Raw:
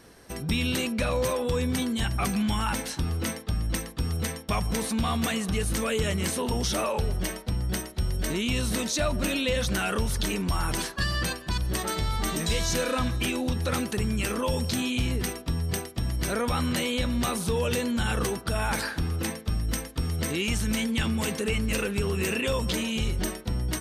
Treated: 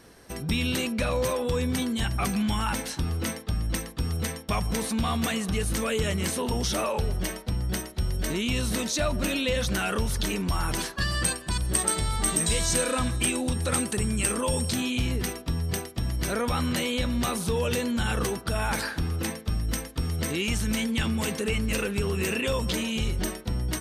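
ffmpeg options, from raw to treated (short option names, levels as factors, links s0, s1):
-filter_complex "[0:a]asettb=1/sr,asplit=3[s0][s1][s2];[s0]atrim=end=11.114[s3];[s1]atrim=start=11.11:end=14.73,asetpts=PTS-STARTPTS,afade=t=in:d=0.004:c=qsin,afade=t=out:st=3.616:d=0.004:c=qsin,equalizer=f=8400:t=o:w=0.28:g=12.5[s4];[s2]atrim=start=14.726[s5];[s3][s4]acrossfade=d=0.004:c1=hsin:c2=qsin[s6];[s6][s5]acrossfade=d=0.004:c1=qsin:c2=hsin"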